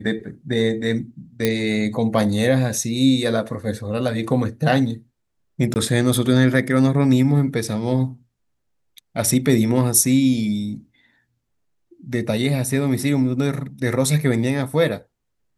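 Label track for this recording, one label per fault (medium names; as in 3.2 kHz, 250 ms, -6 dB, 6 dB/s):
1.450000	1.450000	pop -5 dBFS
5.740000	5.760000	dropout 19 ms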